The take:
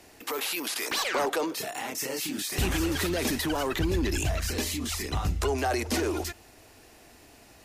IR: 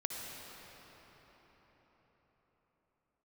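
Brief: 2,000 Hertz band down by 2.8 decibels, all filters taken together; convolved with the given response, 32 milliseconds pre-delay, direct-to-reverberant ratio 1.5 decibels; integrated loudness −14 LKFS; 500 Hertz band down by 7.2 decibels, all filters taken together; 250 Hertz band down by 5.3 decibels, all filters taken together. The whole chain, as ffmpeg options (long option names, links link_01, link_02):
-filter_complex "[0:a]equalizer=frequency=250:width_type=o:gain=-3.5,equalizer=frequency=500:width_type=o:gain=-8.5,equalizer=frequency=2000:width_type=o:gain=-3,asplit=2[link_01][link_02];[1:a]atrim=start_sample=2205,adelay=32[link_03];[link_02][link_03]afir=irnorm=-1:irlink=0,volume=-3.5dB[link_04];[link_01][link_04]amix=inputs=2:normalize=0,volume=15.5dB"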